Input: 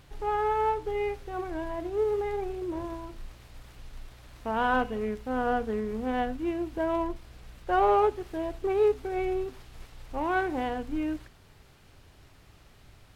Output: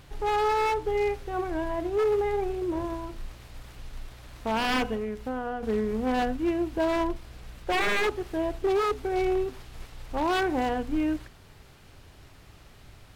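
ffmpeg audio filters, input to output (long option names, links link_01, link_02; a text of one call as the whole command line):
ffmpeg -i in.wav -filter_complex "[0:a]asettb=1/sr,asplit=3[link_01][link_02][link_03];[link_01]atrim=end=4.944[link_04];[link_02]atrim=start=4.94:end=5.63,asetpts=PTS-STARTPTS,afade=type=in:duration=0.004:curve=qsin,afade=type=out:start_time=0.686:duration=0.004:curve=qsin,acompressor=threshold=-32dB:ratio=12[link_05];[link_03]atrim=start=5.626[link_06];[link_04][link_05]acrossfade=duration=0.004:curve1=hsin:curve2=qsin[link_07];[link_07][link_06]acrossfade=duration=0.004:curve1=qsin:curve2=hsin,aeval=exprs='0.0668*(abs(mod(val(0)/0.0668+3,4)-2)-1)':channel_layout=same,volume=4dB" out.wav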